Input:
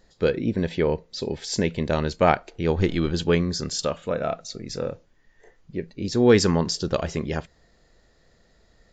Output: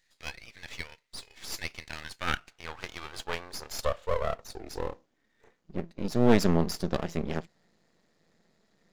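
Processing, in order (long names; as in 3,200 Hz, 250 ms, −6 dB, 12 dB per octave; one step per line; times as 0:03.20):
high-pass filter sweep 2,100 Hz → 180 Hz, 0:01.83–0:05.69
half-wave rectification
level −4.5 dB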